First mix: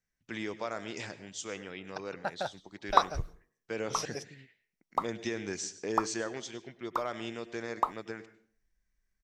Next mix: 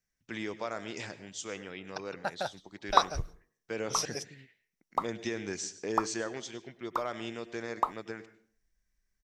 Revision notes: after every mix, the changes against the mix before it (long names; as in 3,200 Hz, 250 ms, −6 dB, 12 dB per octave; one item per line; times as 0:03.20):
second voice: add high-shelf EQ 3,600 Hz +7.5 dB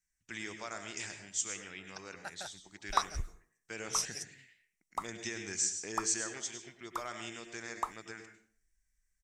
first voice: send +8.5 dB
second voice −4.0 dB
master: add octave-band graphic EQ 125/250/500/1,000/4,000/8,000 Hz −7/−7/−11/−5/−6/+11 dB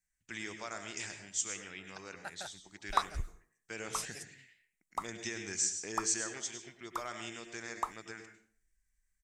second voice: add parametric band 5,700 Hz −14.5 dB 0.24 octaves